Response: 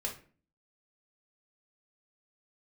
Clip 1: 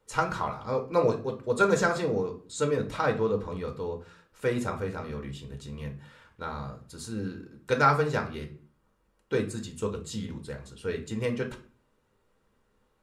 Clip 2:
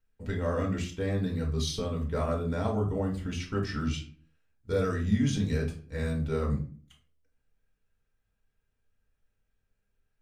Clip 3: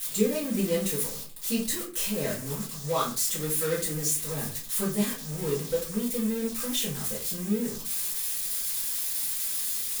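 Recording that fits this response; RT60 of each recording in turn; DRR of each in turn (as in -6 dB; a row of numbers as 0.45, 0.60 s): 2; 0.40, 0.40, 0.40 s; 3.5, -1.5, -9.5 dB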